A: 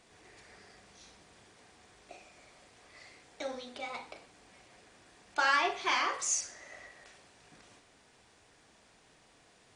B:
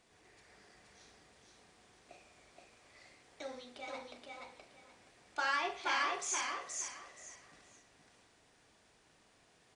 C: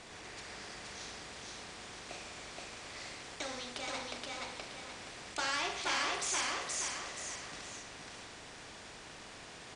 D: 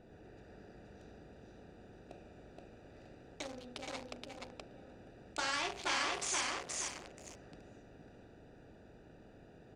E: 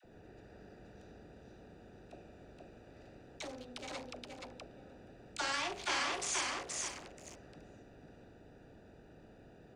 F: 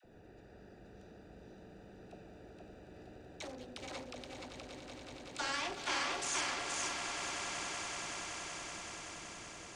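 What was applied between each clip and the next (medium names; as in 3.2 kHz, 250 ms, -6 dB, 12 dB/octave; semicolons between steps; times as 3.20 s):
feedback delay 474 ms, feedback 23%, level -3 dB; trim -6.5 dB
low-pass 8.3 kHz 12 dB/octave; spectrum-flattening compressor 2:1; trim +1 dB
local Wiener filter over 41 samples
phase dispersion lows, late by 47 ms, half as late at 610 Hz
echo with a slow build-up 189 ms, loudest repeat 5, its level -10 dB; trim -1.5 dB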